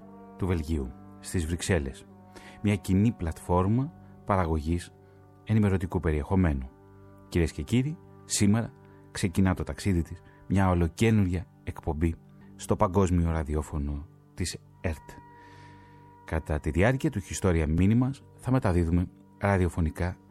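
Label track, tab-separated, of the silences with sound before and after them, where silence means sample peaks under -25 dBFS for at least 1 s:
14.920000	16.280000	silence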